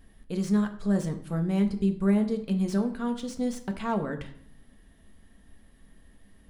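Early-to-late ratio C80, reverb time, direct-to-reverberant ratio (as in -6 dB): 15.5 dB, 0.65 s, 5.0 dB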